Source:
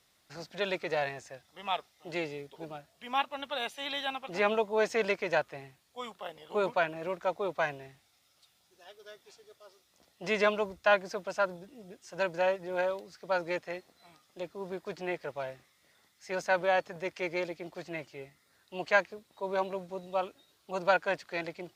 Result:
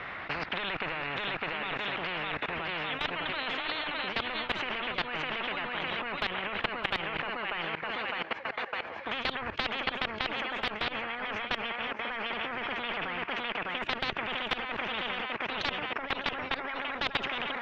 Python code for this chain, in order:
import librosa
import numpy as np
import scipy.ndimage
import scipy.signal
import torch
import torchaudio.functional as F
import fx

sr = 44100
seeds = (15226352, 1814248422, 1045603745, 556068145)

p1 = fx.speed_glide(x, sr, from_pct=101, to_pct=146)
p2 = p1 + fx.echo_thinned(p1, sr, ms=606, feedback_pct=31, hz=340.0, wet_db=-4.0, dry=0)
p3 = fx.tube_stage(p2, sr, drive_db=23.0, bias=0.25)
p4 = fx.over_compress(p3, sr, threshold_db=-38.0, ratio=-1.0)
p5 = p3 + (p4 * librosa.db_to_amplitude(-2.5))
p6 = scipy.signal.sosfilt(scipy.signal.butter(4, 2300.0, 'lowpass', fs=sr, output='sos'), p5)
p7 = fx.peak_eq(p6, sr, hz=1800.0, db=11.0, octaves=2.8)
p8 = fx.level_steps(p7, sr, step_db=21)
y = fx.spectral_comp(p8, sr, ratio=10.0)